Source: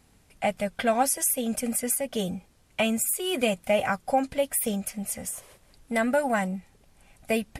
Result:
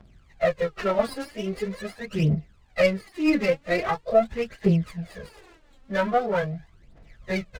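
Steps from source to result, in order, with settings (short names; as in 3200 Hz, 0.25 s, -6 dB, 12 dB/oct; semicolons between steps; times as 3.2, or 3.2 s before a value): pitch shift by moving bins -3 st; downsampling 11025 Hz; phaser 0.43 Hz, delay 3.9 ms, feedback 72%; running maximum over 5 samples; gain +2 dB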